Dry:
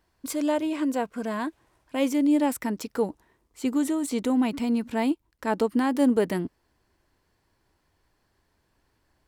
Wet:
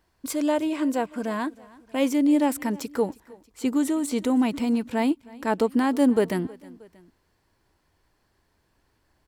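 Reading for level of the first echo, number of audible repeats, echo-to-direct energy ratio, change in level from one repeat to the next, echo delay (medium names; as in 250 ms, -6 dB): -22.5 dB, 2, -21.0 dB, -4.5 dB, 316 ms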